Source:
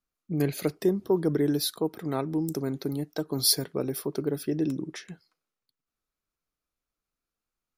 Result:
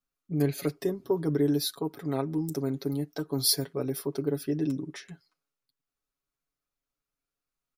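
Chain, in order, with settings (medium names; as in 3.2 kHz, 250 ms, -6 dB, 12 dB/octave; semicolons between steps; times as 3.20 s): comb 7.2 ms, depth 75%; trim -4 dB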